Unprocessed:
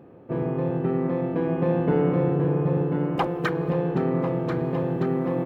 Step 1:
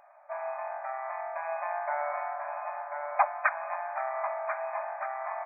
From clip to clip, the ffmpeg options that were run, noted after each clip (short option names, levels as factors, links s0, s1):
-af "afftfilt=real='re*between(b*sr/4096,560,2500)':imag='im*between(b*sr/4096,560,2500)':win_size=4096:overlap=0.75,volume=1.33"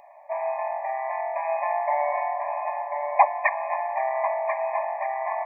-af "asuperstop=centerf=1400:order=12:qfactor=2.3,volume=2.51"